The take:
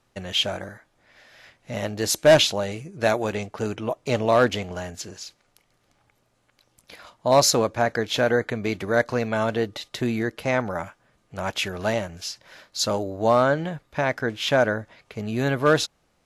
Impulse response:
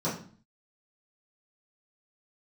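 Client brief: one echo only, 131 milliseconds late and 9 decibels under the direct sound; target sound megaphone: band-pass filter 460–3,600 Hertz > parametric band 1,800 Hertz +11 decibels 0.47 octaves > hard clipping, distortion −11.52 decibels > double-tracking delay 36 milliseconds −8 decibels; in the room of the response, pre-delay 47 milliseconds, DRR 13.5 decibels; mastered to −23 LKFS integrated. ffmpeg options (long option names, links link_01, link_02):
-filter_complex "[0:a]aecho=1:1:131:0.355,asplit=2[link_01][link_02];[1:a]atrim=start_sample=2205,adelay=47[link_03];[link_02][link_03]afir=irnorm=-1:irlink=0,volume=-22.5dB[link_04];[link_01][link_04]amix=inputs=2:normalize=0,highpass=460,lowpass=3600,equalizer=frequency=1800:width_type=o:width=0.47:gain=11,asoftclip=type=hard:threshold=-14dB,asplit=2[link_05][link_06];[link_06]adelay=36,volume=-8dB[link_07];[link_05][link_07]amix=inputs=2:normalize=0"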